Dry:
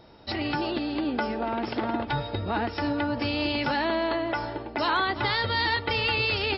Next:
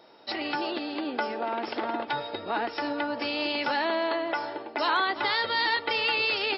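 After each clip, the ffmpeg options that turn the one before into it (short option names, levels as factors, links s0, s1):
-af "highpass=360"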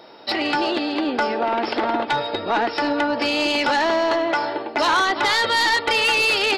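-af "aeval=exprs='0.211*(cos(1*acos(clip(val(0)/0.211,-1,1)))-cos(1*PI/2))+0.0376*(cos(5*acos(clip(val(0)/0.211,-1,1)))-cos(5*PI/2))':c=same,volume=1.68"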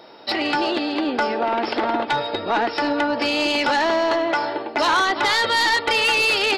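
-af anull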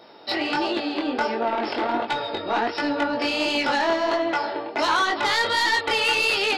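-af "flanger=delay=17.5:depth=6.7:speed=1.4"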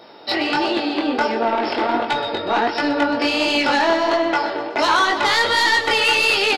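-af "aecho=1:1:124|248|372|496|620|744:0.211|0.123|0.0711|0.0412|0.0239|0.0139,volume=1.68"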